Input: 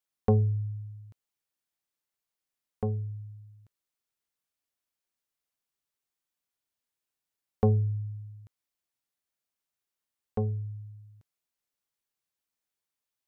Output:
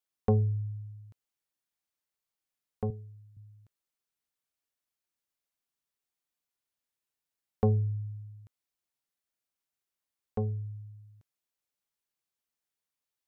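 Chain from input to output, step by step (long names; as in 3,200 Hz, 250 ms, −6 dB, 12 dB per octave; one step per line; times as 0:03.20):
0:02.90–0:03.37: high-pass filter 320 Hz 6 dB per octave
level −2 dB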